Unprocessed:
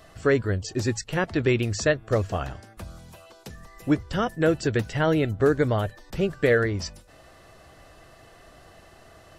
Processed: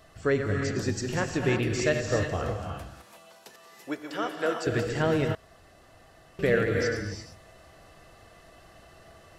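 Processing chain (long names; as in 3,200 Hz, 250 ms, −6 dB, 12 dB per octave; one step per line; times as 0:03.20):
delay that plays each chunk backwards 121 ms, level −8 dB
0:02.70–0:04.67: high-pass filter 450 Hz 12 dB per octave
reverb whose tail is shaped and stops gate 380 ms rising, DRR 2.5 dB
0:05.35–0:06.39: fill with room tone
level −4.5 dB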